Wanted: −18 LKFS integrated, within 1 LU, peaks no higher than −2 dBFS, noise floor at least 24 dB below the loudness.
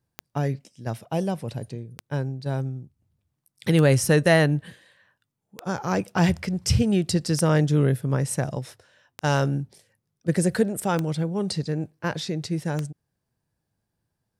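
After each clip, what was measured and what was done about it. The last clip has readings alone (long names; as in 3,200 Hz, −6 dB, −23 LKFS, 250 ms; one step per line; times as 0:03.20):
number of clicks 8; integrated loudness −24.5 LKFS; sample peak −6.5 dBFS; target loudness −18.0 LKFS
→ click removal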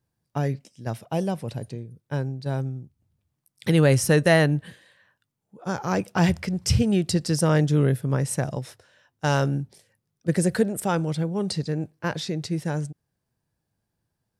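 number of clicks 0; integrated loudness −24.5 LKFS; sample peak −6.5 dBFS; target loudness −18.0 LKFS
→ level +6.5 dB
brickwall limiter −2 dBFS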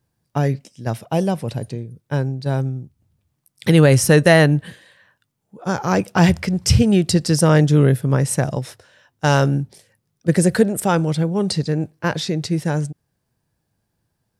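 integrated loudness −18.0 LKFS; sample peak −2.0 dBFS; background noise floor −74 dBFS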